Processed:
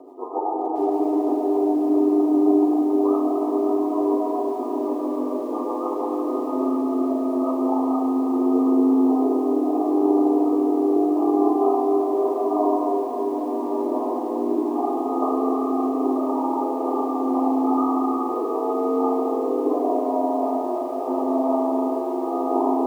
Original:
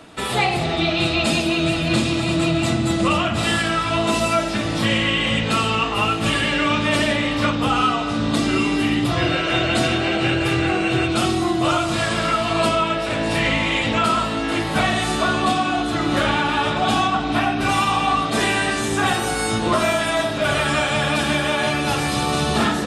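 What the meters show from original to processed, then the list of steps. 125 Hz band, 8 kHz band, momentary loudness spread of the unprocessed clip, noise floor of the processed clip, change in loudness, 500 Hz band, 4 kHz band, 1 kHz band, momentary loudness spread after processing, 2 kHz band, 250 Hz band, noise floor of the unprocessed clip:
under -30 dB, under -20 dB, 2 LU, -27 dBFS, -2.5 dB, +1.5 dB, under -30 dB, -4.0 dB, 7 LU, under -35 dB, +2.0 dB, -24 dBFS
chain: FFT band-pass 270–1200 Hz; low shelf 410 Hz +7 dB; reverse; upward compressor, threshold -22 dBFS; reverse; frequency shift +19 Hz; bit-crush 11-bit; rotary speaker horn 7.5 Hz, later 0.8 Hz, at 5.57; ring modulator 48 Hz; notch comb 560 Hz; spring tank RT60 3.7 s, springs 35/53 ms, chirp 55 ms, DRR -0.5 dB; lo-fi delay 0.576 s, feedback 35%, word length 7-bit, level -12.5 dB

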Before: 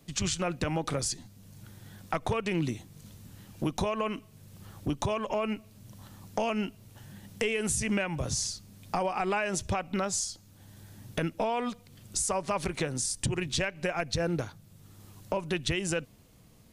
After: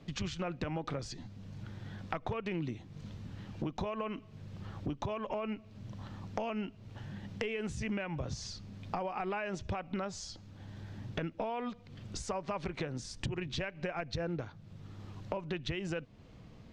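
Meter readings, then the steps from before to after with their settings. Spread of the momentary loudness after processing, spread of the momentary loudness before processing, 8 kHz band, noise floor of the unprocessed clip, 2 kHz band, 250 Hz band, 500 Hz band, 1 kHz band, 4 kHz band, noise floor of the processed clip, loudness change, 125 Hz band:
11 LU, 20 LU, -17.0 dB, -57 dBFS, -7.5 dB, -5.5 dB, -6.5 dB, -6.5 dB, -8.5 dB, -55 dBFS, -8.0 dB, -4.5 dB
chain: air absorption 190 m; compressor 2.5:1, threshold -44 dBFS, peak gain reduction 12.5 dB; gain +5 dB

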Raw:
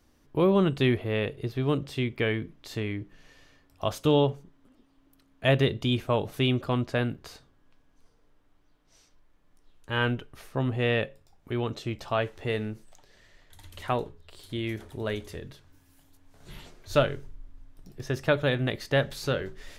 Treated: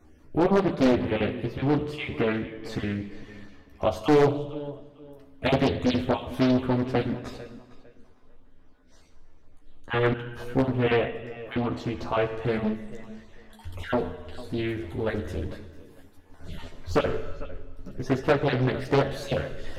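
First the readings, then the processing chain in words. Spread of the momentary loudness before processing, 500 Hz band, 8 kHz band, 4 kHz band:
16 LU, +2.5 dB, n/a, -3.0 dB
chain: random spectral dropouts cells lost 23%; high shelf 2300 Hz -10 dB; in parallel at -1 dB: compressor 12:1, threshold -37 dBFS, peak gain reduction 20 dB; on the sum: chorus voices 4, 0.12 Hz, delay 13 ms, depth 2.6 ms; on a send: tape echo 0.451 s, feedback 26%, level -16 dB, low-pass 4200 Hz; on the sum: non-linear reverb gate 0.42 s falling, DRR 8.5 dB; wavefolder -17.5 dBFS; Doppler distortion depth 0.89 ms; gain +6 dB

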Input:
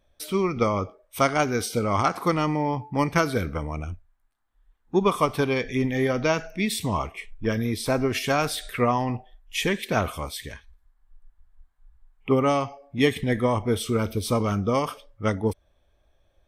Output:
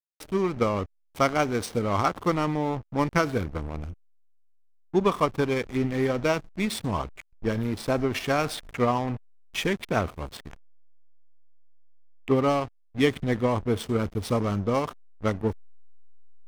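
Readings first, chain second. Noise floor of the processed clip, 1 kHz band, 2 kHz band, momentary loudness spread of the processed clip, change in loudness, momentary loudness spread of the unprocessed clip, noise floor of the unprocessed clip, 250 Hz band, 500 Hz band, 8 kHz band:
-60 dBFS, -2.0 dB, -3.0 dB, 10 LU, -1.5 dB, 10 LU, -67 dBFS, -1.5 dB, -1.5 dB, -5.5 dB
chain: backlash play -26.5 dBFS; gain -1 dB

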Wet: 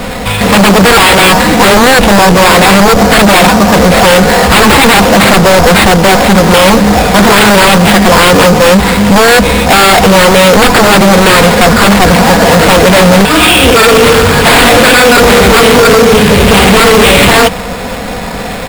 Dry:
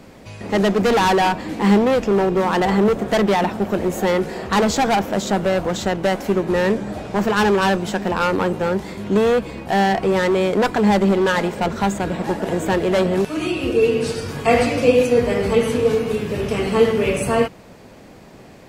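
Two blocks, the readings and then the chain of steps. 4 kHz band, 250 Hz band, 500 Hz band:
+22.0 dB, +13.0 dB, +12.0 dB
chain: bell 300 Hz -11 dB 1.1 oct; comb 4.1 ms, depth 67%; in parallel at 0 dB: limiter -14 dBFS, peak gain reduction 11 dB; on the sum: sine folder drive 15 dB, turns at 0 dBFS; sample-rate reducer 6000 Hz, jitter 0%; soft clip -4 dBFS, distortion -17 dB; Doppler distortion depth 0.24 ms; gain +3.5 dB

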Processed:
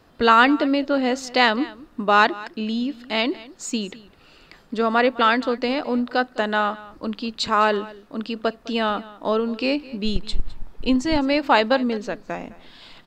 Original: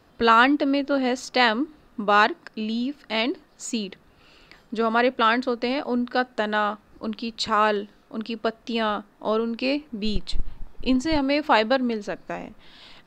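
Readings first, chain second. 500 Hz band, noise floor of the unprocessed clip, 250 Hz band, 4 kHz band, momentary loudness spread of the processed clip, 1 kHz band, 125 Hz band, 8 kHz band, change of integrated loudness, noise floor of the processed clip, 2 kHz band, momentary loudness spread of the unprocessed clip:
+2.0 dB, -57 dBFS, +2.0 dB, +2.0 dB, 14 LU, +2.0 dB, +2.0 dB, +2.0 dB, +2.0 dB, -53 dBFS, +2.0 dB, 15 LU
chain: echo 0.208 s -19.5 dB; gain +2 dB

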